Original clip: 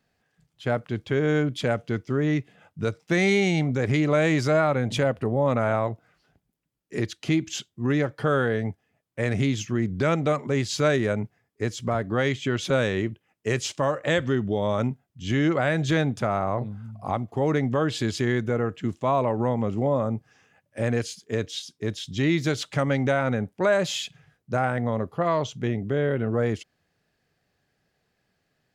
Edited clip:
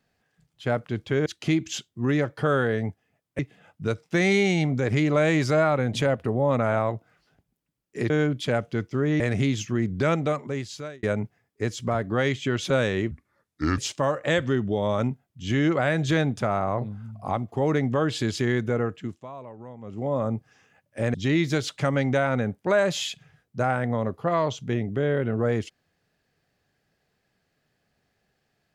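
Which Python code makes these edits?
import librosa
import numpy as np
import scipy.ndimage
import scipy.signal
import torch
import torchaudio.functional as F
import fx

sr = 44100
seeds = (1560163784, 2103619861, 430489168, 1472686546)

y = fx.edit(x, sr, fx.swap(start_s=1.26, length_s=1.1, other_s=7.07, other_length_s=2.13),
    fx.fade_out_span(start_s=10.11, length_s=0.92),
    fx.speed_span(start_s=13.11, length_s=0.47, speed=0.7),
    fx.fade_down_up(start_s=18.62, length_s=1.45, db=-17.5, fade_s=0.46),
    fx.cut(start_s=20.94, length_s=1.14), tone=tone)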